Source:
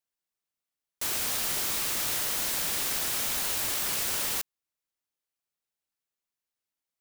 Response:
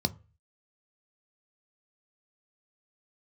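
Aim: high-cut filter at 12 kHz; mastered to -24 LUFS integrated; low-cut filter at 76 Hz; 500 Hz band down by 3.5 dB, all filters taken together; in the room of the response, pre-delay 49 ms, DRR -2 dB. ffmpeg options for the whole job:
-filter_complex "[0:a]highpass=76,lowpass=12000,equalizer=f=500:t=o:g=-4.5,asplit=2[s0][s1];[1:a]atrim=start_sample=2205,adelay=49[s2];[s1][s2]afir=irnorm=-1:irlink=0,volume=0.631[s3];[s0][s3]amix=inputs=2:normalize=0,volume=1.33"

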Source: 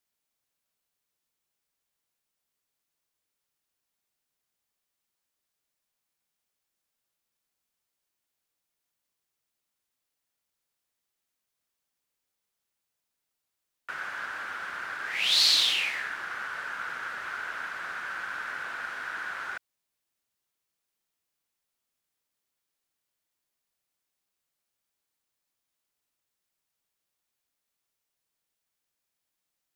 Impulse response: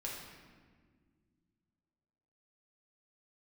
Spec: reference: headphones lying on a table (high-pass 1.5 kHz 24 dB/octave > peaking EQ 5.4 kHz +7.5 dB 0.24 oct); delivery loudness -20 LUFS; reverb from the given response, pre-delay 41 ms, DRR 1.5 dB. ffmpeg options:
-filter_complex "[0:a]asplit=2[s0][s1];[1:a]atrim=start_sample=2205,adelay=41[s2];[s1][s2]afir=irnorm=-1:irlink=0,volume=0.841[s3];[s0][s3]amix=inputs=2:normalize=0,highpass=f=1500:w=0.5412,highpass=f=1500:w=1.3066,equalizer=f=5400:t=o:w=0.24:g=7.5,volume=2"

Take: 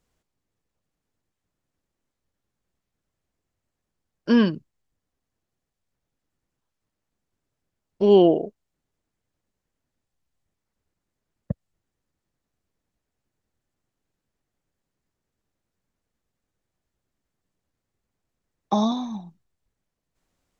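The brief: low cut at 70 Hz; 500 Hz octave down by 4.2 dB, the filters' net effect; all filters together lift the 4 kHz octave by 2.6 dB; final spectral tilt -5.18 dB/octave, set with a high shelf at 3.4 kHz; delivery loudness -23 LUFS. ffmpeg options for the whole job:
-af "highpass=70,equalizer=f=500:t=o:g=-6,highshelf=f=3400:g=-6.5,equalizer=f=4000:t=o:g=8"

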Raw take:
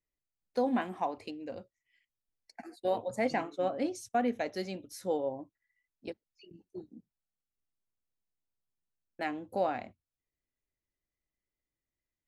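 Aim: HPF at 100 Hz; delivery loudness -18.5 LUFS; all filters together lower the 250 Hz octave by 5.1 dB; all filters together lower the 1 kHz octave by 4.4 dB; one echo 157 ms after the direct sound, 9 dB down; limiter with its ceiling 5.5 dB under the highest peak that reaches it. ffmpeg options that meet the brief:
-af "highpass=100,equalizer=f=250:t=o:g=-5.5,equalizer=f=1000:t=o:g=-6.5,alimiter=level_in=1.26:limit=0.0631:level=0:latency=1,volume=0.794,aecho=1:1:157:0.355,volume=10.6"

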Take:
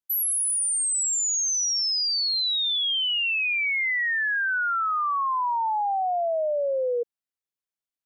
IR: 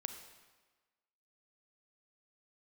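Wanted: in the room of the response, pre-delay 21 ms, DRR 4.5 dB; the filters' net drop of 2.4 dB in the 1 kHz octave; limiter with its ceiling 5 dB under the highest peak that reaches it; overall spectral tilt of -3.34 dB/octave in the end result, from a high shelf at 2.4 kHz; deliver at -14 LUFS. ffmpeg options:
-filter_complex "[0:a]equalizer=f=1000:t=o:g=-4.5,highshelf=f=2400:g=7,alimiter=limit=0.1:level=0:latency=1,asplit=2[s0][s1];[1:a]atrim=start_sample=2205,adelay=21[s2];[s1][s2]afir=irnorm=-1:irlink=0,volume=0.708[s3];[s0][s3]amix=inputs=2:normalize=0,volume=2.11"

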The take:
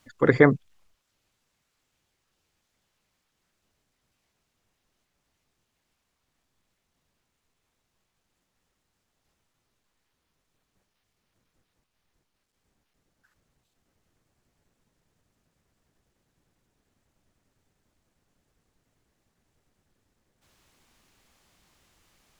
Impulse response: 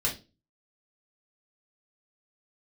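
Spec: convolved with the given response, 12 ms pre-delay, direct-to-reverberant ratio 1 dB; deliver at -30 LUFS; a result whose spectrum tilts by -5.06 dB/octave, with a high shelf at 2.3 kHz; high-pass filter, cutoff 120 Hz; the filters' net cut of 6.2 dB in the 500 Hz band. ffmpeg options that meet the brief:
-filter_complex "[0:a]highpass=120,equalizer=f=500:t=o:g=-7,highshelf=f=2300:g=-5,asplit=2[s0][s1];[1:a]atrim=start_sample=2205,adelay=12[s2];[s1][s2]afir=irnorm=-1:irlink=0,volume=0.398[s3];[s0][s3]amix=inputs=2:normalize=0,volume=0.335"

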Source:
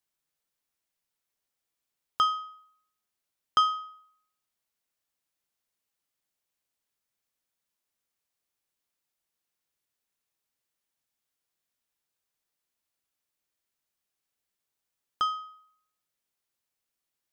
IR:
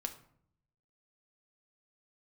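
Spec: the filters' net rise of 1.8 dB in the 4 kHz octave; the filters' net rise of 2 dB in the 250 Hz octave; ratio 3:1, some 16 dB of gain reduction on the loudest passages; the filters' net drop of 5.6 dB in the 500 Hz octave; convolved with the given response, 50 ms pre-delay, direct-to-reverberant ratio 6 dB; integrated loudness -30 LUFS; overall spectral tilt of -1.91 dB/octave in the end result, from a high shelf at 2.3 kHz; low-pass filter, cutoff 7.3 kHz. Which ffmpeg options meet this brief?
-filter_complex "[0:a]lowpass=7300,equalizer=f=250:t=o:g=5.5,equalizer=f=500:t=o:g=-9,highshelf=f=2300:g=-3,equalizer=f=4000:t=o:g=6,acompressor=threshold=0.00794:ratio=3,asplit=2[s0][s1];[1:a]atrim=start_sample=2205,adelay=50[s2];[s1][s2]afir=irnorm=-1:irlink=0,volume=0.531[s3];[s0][s3]amix=inputs=2:normalize=0,volume=3.98"

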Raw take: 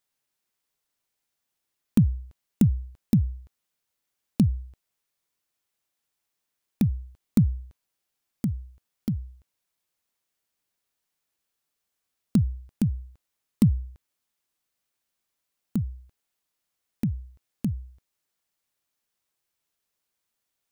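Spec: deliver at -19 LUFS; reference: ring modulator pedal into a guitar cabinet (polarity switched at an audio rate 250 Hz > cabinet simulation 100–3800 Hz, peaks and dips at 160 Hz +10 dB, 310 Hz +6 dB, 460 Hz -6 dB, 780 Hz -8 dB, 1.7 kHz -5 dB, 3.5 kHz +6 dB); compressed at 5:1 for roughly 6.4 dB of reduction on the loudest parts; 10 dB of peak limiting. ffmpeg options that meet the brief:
-af "acompressor=threshold=0.0891:ratio=5,alimiter=limit=0.112:level=0:latency=1,aeval=exprs='val(0)*sgn(sin(2*PI*250*n/s))':c=same,highpass=100,equalizer=f=160:t=q:w=4:g=10,equalizer=f=310:t=q:w=4:g=6,equalizer=f=460:t=q:w=4:g=-6,equalizer=f=780:t=q:w=4:g=-8,equalizer=f=1700:t=q:w=4:g=-5,equalizer=f=3500:t=q:w=4:g=6,lowpass=f=3800:w=0.5412,lowpass=f=3800:w=1.3066,volume=3.76"

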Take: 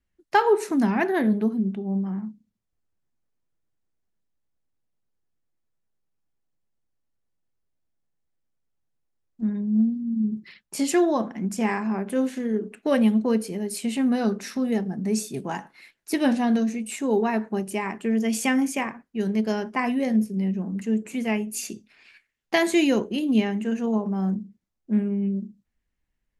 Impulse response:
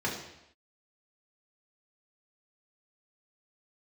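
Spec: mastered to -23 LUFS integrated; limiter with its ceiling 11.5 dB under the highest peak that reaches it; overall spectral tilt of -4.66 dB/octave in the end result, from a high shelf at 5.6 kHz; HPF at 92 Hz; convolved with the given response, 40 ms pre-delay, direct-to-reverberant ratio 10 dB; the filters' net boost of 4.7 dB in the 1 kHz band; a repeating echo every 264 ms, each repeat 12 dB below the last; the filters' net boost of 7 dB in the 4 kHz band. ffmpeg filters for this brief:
-filter_complex "[0:a]highpass=92,equalizer=f=1000:t=o:g=5.5,equalizer=f=4000:t=o:g=7,highshelf=f=5600:g=6,alimiter=limit=0.2:level=0:latency=1,aecho=1:1:264|528|792:0.251|0.0628|0.0157,asplit=2[s0][s1];[1:a]atrim=start_sample=2205,adelay=40[s2];[s1][s2]afir=irnorm=-1:irlink=0,volume=0.126[s3];[s0][s3]amix=inputs=2:normalize=0,volume=1.12"

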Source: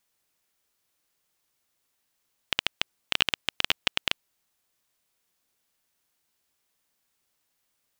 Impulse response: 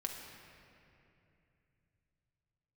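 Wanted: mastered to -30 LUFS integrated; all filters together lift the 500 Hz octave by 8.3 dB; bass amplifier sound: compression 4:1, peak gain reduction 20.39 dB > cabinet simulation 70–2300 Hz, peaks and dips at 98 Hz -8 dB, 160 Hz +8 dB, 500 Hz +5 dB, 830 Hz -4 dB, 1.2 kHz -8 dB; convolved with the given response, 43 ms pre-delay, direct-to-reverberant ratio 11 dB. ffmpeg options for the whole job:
-filter_complex "[0:a]equalizer=f=500:t=o:g=7,asplit=2[s0][s1];[1:a]atrim=start_sample=2205,adelay=43[s2];[s1][s2]afir=irnorm=-1:irlink=0,volume=0.266[s3];[s0][s3]amix=inputs=2:normalize=0,acompressor=threshold=0.00891:ratio=4,highpass=f=70:w=0.5412,highpass=f=70:w=1.3066,equalizer=f=98:t=q:w=4:g=-8,equalizer=f=160:t=q:w=4:g=8,equalizer=f=500:t=q:w=4:g=5,equalizer=f=830:t=q:w=4:g=-4,equalizer=f=1200:t=q:w=4:g=-8,lowpass=f=2300:w=0.5412,lowpass=f=2300:w=1.3066,volume=11.9"

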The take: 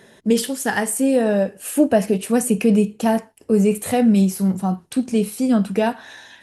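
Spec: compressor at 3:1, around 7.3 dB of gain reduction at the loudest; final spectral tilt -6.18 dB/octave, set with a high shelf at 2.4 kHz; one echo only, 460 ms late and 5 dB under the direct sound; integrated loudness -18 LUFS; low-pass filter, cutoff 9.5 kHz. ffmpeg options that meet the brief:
-af "lowpass=9500,highshelf=f=2400:g=-6,acompressor=threshold=0.0891:ratio=3,aecho=1:1:460:0.562,volume=2"

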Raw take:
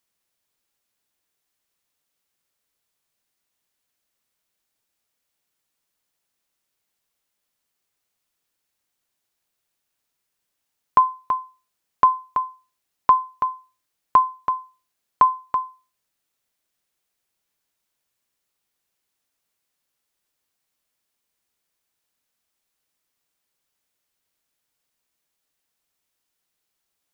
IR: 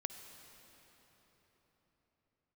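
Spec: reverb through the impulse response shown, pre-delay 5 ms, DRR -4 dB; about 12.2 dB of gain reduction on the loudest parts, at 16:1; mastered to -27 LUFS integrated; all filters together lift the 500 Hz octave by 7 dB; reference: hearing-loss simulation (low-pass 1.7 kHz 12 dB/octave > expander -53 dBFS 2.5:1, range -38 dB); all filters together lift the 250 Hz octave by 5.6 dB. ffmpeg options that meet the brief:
-filter_complex "[0:a]equalizer=f=250:t=o:g=4.5,equalizer=f=500:t=o:g=8,acompressor=threshold=0.1:ratio=16,asplit=2[s0][s1];[1:a]atrim=start_sample=2205,adelay=5[s2];[s1][s2]afir=irnorm=-1:irlink=0,volume=1.88[s3];[s0][s3]amix=inputs=2:normalize=0,lowpass=1700,agate=range=0.0126:threshold=0.00224:ratio=2.5,volume=0.668"

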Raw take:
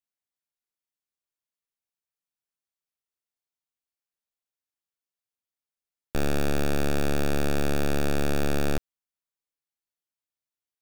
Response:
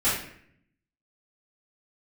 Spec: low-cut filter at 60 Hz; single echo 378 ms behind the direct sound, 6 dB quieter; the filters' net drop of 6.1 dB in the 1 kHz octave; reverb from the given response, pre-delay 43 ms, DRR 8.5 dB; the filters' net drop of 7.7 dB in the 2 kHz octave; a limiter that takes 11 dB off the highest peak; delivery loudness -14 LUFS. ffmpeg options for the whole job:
-filter_complex "[0:a]highpass=60,equalizer=f=1000:t=o:g=-7.5,equalizer=f=2000:t=o:g=-8,alimiter=level_in=1.5:limit=0.0631:level=0:latency=1,volume=0.668,aecho=1:1:378:0.501,asplit=2[s0][s1];[1:a]atrim=start_sample=2205,adelay=43[s2];[s1][s2]afir=irnorm=-1:irlink=0,volume=0.0794[s3];[s0][s3]amix=inputs=2:normalize=0,volume=21.1"

